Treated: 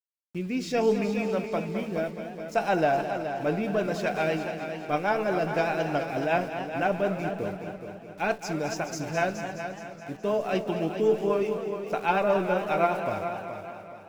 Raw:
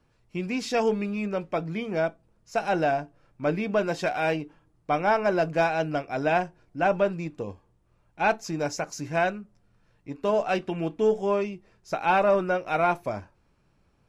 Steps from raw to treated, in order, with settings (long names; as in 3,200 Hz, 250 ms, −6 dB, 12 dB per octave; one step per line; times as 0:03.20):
rotating-speaker cabinet horn 0.65 Hz, later 8 Hz, at 0:02.89
centre clipping without the shift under −47 dBFS
tuned comb filter 63 Hz, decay 0.25 s, mix 40%
on a send: echo machine with several playback heads 211 ms, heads first and second, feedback 50%, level −11 dB
on the sum: feedback echo with a swinging delay time 274 ms, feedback 42%, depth 192 cents, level −14 dB
level +3 dB